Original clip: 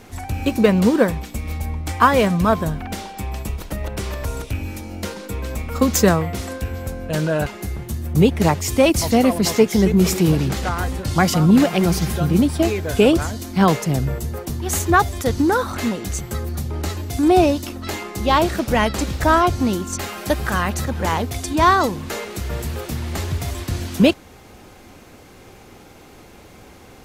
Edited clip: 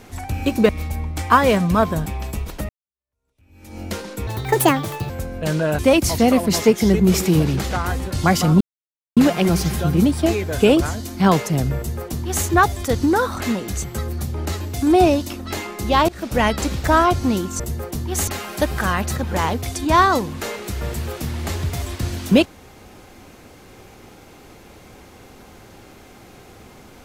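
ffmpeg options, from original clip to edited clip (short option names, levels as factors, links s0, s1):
-filter_complex "[0:a]asplit=11[s0][s1][s2][s3][s4][s5][s6][s7][s8][s9][s10];[s0]atrim=end=0.692[s11];[s1]atrim=start=1.388:end=2.762[s12];[s2]atrim=start=3.178:end=3.81,asetpts=PTS-STARTPTS,afade=t=out:st=0.628:d=0.004:c=hsin[s13];[s3]atrim=start=3.81:end=5.394,asetpts=PTS-STARTPTS,afade=t=in:d=1.08:c=exp[s14];[s4]atrim=start=5.39:end=6.77,asetpts=PTS-STARTPTS,asetrate=73647,aresample=44100[s15];[s5]atrim=start=6.766:end=7.462[s16];[s6]atrim=start=8.708:end=11.53,asetpts=PTS-STARTPTS,afade=t=out:st=2.818:d=0.004:c=hsin,apad=pad_dur=0.56[s17];[s7]atrim=start=11.53:end=18.45,asetpts=PTS-STARTPTS,afade=t=in:d=0.004:c=hsin,afade=t=out:st=6.916:d=0.004:c=hsin:silence=0.0707946[s18];[s8]atrim=start=18.45:end=19.962,asetpts=PTS-STARTPTS,afade=t=in:d=0.31:silence=0.0707946[s19];[s9]atrim=start=14.138:end=14.822[s20];[s10]atrim=start=19.958[s21];[s11][s12]acrossfade=d=0.004:c1=hsin:c2=hsin[s22];[s13][s14]concat=n=2:v=0:a=1[s23];[s22][s23]acrossfade=d=0.004:c1=hsin:c2=hsin[s24];[s24][s15]acrossfade=d=0.004:c1=hsin:c2=hsin[s25];[s25][s16]acrossfade=d=0.004:c1=hsin:c2=hsin[s26];[s17][s18][s19]concat=n=3:v=0:a=1[s27];[s26][s27]acrossfade=d=0.004:c1=hsin:c2=hsin[s28];[s28][s20]acrossfade=d=0.004:c1=hsin:c2=hsin[s29];[s29][s21]acrossfade=d=0.004:c1=hsin:c2=hsin"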